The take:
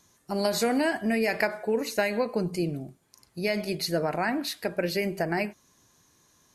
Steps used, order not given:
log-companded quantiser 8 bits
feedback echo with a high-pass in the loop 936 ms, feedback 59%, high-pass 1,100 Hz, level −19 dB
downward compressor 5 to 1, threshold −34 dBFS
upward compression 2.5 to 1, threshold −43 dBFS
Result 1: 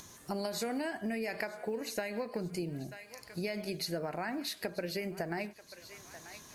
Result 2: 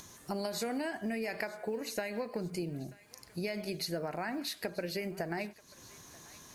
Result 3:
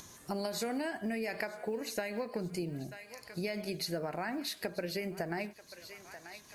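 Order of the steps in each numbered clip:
log-companded quantiser, then upward compression, then feedback echo with a high-pass in the loop, then downward compressor
downward compressor, then log-companded quantiser, then upward compression, then feedback echo with a high-pass in the loop
feedback echo with a high-pass in the loop, then upward compression, then downward compressor, then log-companded quantiser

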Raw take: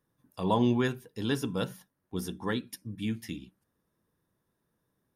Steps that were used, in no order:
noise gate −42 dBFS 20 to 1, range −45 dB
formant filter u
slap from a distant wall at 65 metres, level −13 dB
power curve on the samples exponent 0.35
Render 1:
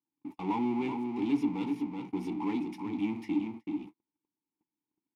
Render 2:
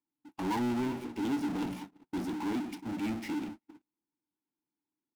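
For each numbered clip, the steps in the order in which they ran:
slap from a distant wall, then power curve on the samples, then formant filter, then noise gate
formant filter, then power curve on the samples, then slap from a distant wall, then noise gate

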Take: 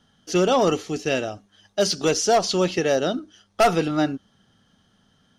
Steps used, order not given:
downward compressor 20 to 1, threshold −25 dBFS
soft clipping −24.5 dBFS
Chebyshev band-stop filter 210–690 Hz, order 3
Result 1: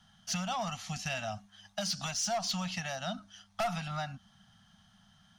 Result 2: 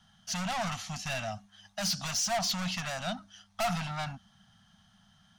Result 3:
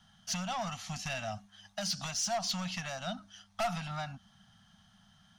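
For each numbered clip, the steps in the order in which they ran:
downward compressor, then Chebyshev band-stop filter, then soft clipping
soft clipping, then downward compressor, then Chebyshev band-stop filter
downward compressor, then soft clipping, then Chebyshev band-stop filter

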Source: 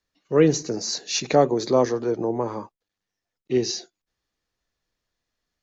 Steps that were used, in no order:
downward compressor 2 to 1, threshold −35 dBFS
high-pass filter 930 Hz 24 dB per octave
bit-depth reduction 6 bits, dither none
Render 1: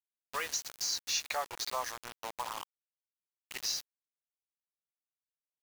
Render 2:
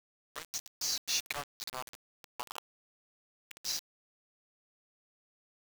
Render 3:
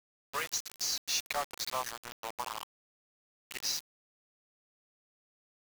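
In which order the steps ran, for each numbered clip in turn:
high-pass filter, then bit-depth reduction, then downward compressor
downward compressor, then high-pass filter, then bit-depth reduction
high-pass filter, then downward compressor, then bit-depth reduction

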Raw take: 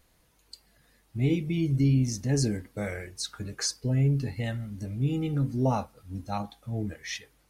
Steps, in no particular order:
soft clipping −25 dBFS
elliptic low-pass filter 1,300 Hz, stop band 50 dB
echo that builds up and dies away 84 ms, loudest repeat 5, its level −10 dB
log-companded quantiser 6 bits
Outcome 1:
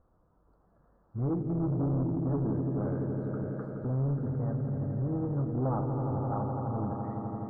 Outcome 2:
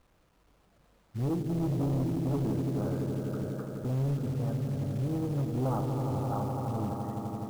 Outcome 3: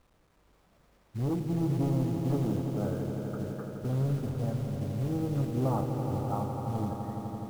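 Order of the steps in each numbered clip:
echo that builds up and dies away, then soft clipping, then log-companded quantiser, then elliptic low-pass filter
echo that builds up and dies away, then soft clipping, then elliptic low-pass filter, then log-companded quantiser
soft clipping, then elliptic low-pass filter, then log-companded quantiser, then echo that builds up and dies away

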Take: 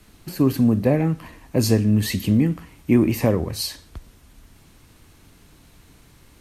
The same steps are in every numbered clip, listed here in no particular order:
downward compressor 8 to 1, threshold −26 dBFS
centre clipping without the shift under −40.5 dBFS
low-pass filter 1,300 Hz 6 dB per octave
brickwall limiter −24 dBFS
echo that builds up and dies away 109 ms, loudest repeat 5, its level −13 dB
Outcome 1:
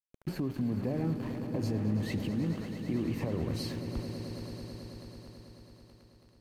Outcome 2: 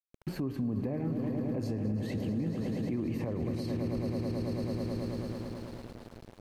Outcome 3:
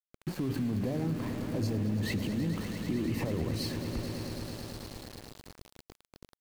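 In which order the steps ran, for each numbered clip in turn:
downward compressor, then centre clipping without the shift, then low-pass filter, then brickwall limiter, then echo that builds up and dies away
echo that builds up and dies away, then centre clipping without the shift, then downward compressor, then brickwall limiter, then low-pass filter
low-pass filter, then brickwall limiter, then echo that builds up and dies away, then centre clipping without the shift, then downward compressor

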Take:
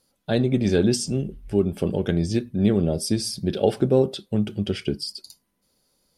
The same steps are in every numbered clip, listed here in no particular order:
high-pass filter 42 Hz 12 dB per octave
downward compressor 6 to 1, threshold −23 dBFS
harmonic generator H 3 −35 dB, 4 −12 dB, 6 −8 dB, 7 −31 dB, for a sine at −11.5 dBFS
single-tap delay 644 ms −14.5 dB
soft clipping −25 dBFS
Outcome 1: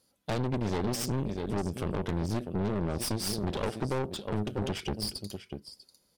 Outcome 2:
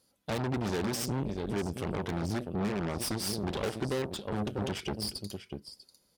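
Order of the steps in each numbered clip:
single-tap delay, then downward compressor, then harmonic generator, then high-pass filter, then soft clipping
single-tap delay, then harmonic generator, then downward compressor, then soft clipping, then high-pass filter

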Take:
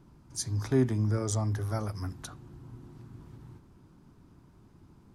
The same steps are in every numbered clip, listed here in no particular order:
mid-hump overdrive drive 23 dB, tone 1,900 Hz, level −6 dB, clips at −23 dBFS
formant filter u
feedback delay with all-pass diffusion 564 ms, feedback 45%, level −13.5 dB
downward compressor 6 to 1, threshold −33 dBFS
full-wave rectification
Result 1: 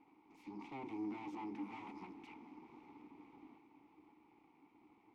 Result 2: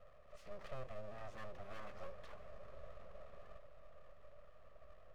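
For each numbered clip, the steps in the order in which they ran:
mid-hump overdrive, then feedback delay with all-pass diffusion, then full-wave rectification, then formant filter, then downward compressor
downward compressor, then mid-hump overdrive, then formant filter, then full-wave rectification, then feedback delay with all-pass diffusion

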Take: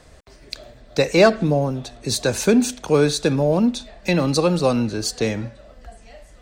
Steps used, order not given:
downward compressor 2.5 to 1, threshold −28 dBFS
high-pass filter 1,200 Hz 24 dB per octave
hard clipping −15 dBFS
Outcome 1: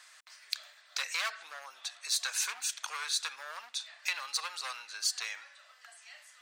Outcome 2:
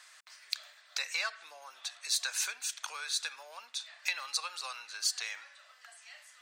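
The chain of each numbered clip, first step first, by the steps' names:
hard clipping, then downward compressor, then high-pass filter
downward compressor, then high-pass filter, then hard clipping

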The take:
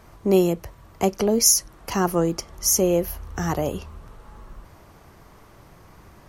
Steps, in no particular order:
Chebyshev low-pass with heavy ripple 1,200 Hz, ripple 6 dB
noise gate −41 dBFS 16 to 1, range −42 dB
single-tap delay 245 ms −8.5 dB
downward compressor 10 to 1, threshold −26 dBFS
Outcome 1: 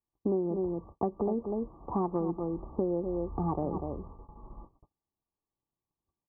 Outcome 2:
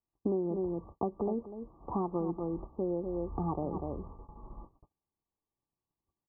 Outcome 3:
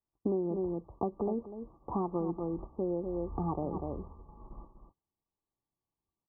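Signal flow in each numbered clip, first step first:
single-tap delay, then noise gate, then Chebyshev low-pass with heavy ripple, then downward compressor
single-tap delay, then noise gate, then downward compressor, then Chebyshev low-pass with heavy ripple
noise gate, then single-tap delay, then downward compressor, then Chebyshev low-pass with heavy ripple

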